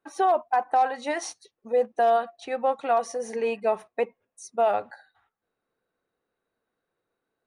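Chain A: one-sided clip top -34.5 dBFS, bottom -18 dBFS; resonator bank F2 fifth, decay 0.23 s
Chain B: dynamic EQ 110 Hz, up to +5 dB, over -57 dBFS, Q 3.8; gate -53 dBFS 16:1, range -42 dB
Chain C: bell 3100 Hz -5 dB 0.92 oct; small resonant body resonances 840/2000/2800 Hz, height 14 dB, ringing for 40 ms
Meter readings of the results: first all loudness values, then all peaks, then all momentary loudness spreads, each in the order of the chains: -39.5, -26.0, -22.0 LUFS; -23.0, -12.5, -6.5 dBFS; 12, 9, 13 LU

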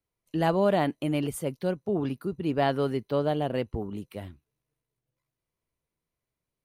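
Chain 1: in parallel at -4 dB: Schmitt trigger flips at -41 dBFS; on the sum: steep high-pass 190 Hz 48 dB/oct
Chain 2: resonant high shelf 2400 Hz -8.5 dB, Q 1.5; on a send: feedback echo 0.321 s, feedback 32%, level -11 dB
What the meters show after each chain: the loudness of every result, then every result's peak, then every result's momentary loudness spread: -26.5, -28.0 LUFS; -11.0, -11.5 dBFS; 11, 12 LU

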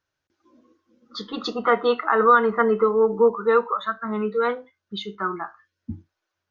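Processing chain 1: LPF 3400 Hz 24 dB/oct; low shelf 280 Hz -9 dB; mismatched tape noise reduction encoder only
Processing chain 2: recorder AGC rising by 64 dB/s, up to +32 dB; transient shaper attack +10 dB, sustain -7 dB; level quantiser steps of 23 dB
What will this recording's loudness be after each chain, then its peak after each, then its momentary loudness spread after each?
-23.0, -26.5 LUFS; -6.5, -5.5 dBFS; 18, 9 LU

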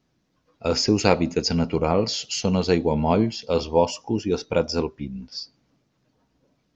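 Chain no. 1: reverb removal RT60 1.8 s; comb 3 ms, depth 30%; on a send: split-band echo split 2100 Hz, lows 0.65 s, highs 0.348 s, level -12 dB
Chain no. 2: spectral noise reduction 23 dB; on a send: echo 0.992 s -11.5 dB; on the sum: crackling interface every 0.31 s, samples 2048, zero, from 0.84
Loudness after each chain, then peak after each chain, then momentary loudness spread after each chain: -24.5, -23.5 LUFS; -3.5, -2.0 dBFS; 13, 12 LU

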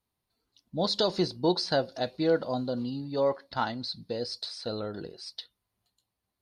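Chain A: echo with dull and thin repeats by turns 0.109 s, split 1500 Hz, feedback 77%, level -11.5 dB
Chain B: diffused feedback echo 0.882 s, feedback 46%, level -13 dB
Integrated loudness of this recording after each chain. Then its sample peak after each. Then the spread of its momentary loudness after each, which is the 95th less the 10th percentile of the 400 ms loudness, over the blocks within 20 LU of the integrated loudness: -30.0, -30.0 LUFS; -13.0, -13.0 dBFS; 13, 17 LU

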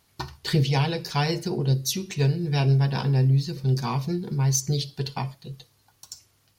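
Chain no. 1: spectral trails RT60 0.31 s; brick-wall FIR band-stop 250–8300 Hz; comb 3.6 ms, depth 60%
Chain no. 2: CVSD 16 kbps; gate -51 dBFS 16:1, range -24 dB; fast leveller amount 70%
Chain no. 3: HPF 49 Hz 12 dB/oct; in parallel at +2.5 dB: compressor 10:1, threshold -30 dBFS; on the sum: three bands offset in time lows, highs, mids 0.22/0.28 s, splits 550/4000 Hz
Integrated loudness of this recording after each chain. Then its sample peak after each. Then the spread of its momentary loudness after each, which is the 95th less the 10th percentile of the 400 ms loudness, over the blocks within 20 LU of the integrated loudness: -32.0, -22.0, -22.0 LUFS; -18.0, -9.0, -7.5 dBFS; 19, 6, 12 LU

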